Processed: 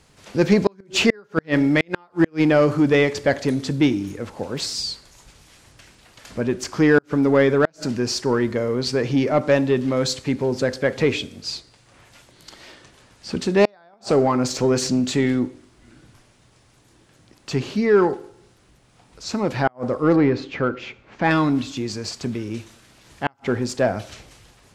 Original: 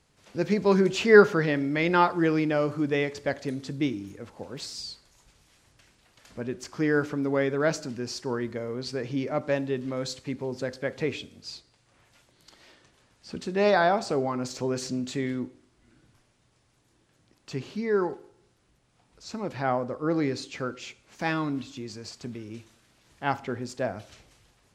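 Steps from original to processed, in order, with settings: 20.16–21.31 s: low-pass 2.3 kHz 12 dB/octave; inverted gate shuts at -13 dBFS, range -41 dB; in parallel at -3 dB: saturation -25.5 dBFS, distortion -10 dB; on the sum: trim +6.5 dB

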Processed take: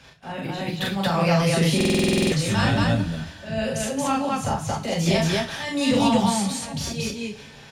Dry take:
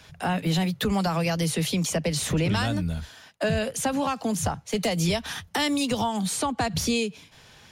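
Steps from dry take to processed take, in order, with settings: treble shelf 8.2 kHz -11 dB; slow attack 299 ms; loudspeakers at several distances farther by 14 m -1 dB, 78 m 0 dB; reverberation, pre-delay 3 ms, DRR 1 dB; buffer glitch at 1.76 s, samples 2048, times 11

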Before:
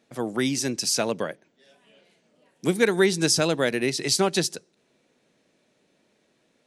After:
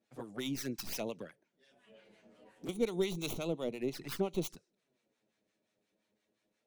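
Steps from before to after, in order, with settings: tracing distortion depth 0.22 ms; 3.33–4.42 s: treble shelf 2.9 kHz -7.5 dB; touch-sensitive flanger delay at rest 9.8 ms, full sweep at -21 dBFS; harmonic tremolo 5.7 Hz, depth 70%, crossover 820 Hz; 1.19–2.69 s: three bands compressed up and down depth 70%; trim -8.5 dB

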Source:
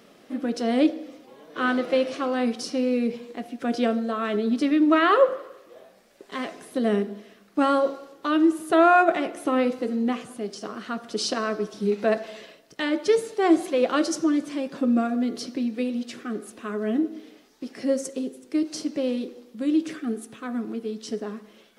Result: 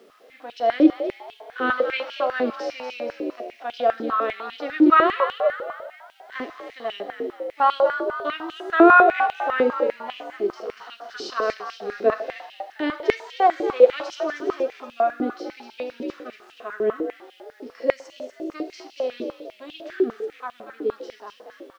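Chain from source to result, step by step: low-pass 5.9 kHz 24 dB/octave; on a send: frequency-shifting echo 238 ms, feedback 45%, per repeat +61 Hz, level -9 dB; on the sum: harmonic-percussive split percussive -14 dB; bit crusher 11-bit; step-sequenced high-pass 10 Hz 370–2900 Hz

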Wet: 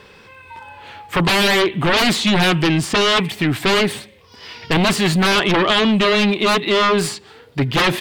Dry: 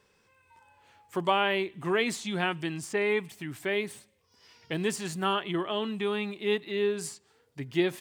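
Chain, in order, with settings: sine folder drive 18 dB, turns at -12 dBFS; resonant high shelf 5 kHz -7.5 dB, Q 1.5

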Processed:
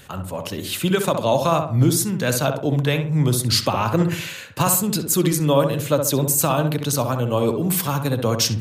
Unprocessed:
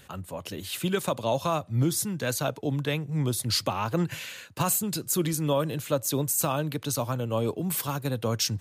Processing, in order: filtered feedback delay 65 ms, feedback 42%, low-pass 1.7 kHz, level -5.5 dB; trim +7 dB

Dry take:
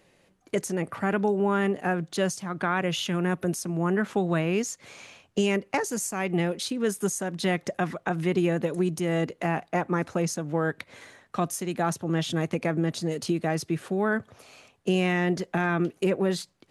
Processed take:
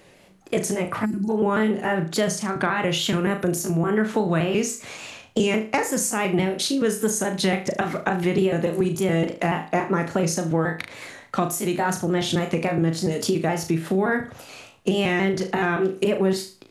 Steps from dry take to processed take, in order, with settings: pitch shift switched off and on +1.5 st, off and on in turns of 142 ms; flutter echo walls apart 6.3 m, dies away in 0.3 s; compression 2:1, threshold -31 dBFS, peak gain reduction 8 dB; time-frequency box 1.05–1.30 s, 380–4000 Hz -26 dB; trim +9 dB

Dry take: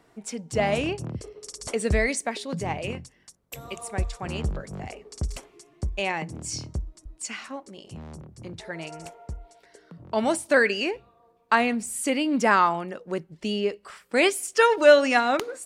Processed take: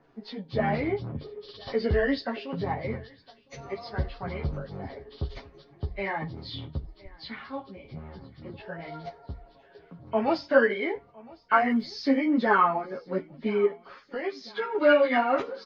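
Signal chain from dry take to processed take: knee-point frequency compression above 1.4 kHz 1.5:1; treble shelf 3.5 kHz -11.5 dB; comb 7.3 ms, depth 41%; 11.56–12.19 s: crackle 67 per s -50 dBFS; 13.65–14.75 s: compression 4:1, threshold -31 dBFS, peak gain reduction 14 dB; flange 0.16 Hz, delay 7.9 ms, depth 5.9 ms, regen -76%; feedback delay 1010 ms, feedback 52%, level -24 dB; three-phase chorus; trim +6.5 dB

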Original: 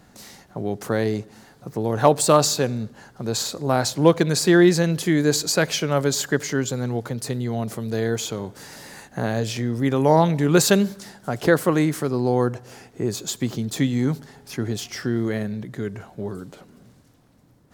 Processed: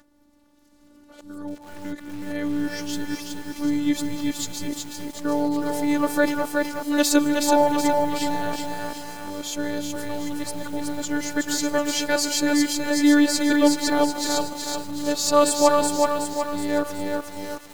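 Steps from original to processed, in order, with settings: reverse the whole clip; robot voice 292 Hz; on a send at -14 dB: reverberation RT60 0.40 s, pre-delay 146 ms; on the sum: bit-crushed delay 372 ms, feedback 55%, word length 7-bit, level -3 dB

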